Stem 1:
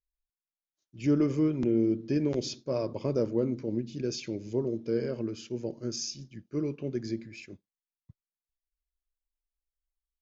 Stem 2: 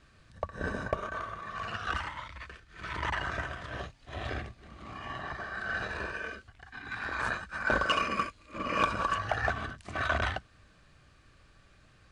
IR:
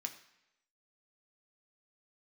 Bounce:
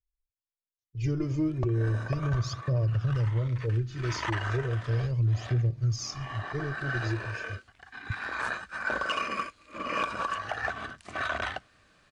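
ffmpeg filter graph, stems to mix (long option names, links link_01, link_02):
-filter_complex "[0:a]lowshelf=frequency=160:width_type=q:width=3:gain=13,agate=range=-16dB:threshold=-40dB:ratio=16:detection=peak,aphaser=in_gain=1:out_gain=1:delay=3.3:decay=0.68:speed=0.36:type=triangular,volume=-3.5dB,asplit=2[link_01][link_02];[1:a]lowshelf=frequency=150:gain=-11.5,adelay=1200,volume=0.5dB,asplit=2[link_03][link_04];[link_04]volume=-19.5dB[link_05];[link_02]apad=whole_len=587039[link_06];[link_03][link_06]sidechaincompress=threshold=-23dB:ratio=8:attack=16:release=926[link_07];[2:a]atrim=start_sample=2205[link_08];[link_05][link_08]afir=irnorm=-1:irlink=0[link_09];[link_01][link_07][link_09]amix=inputs=3:normalize=0,alimiter=limit=-20dB:level=0:latency=1:release=164"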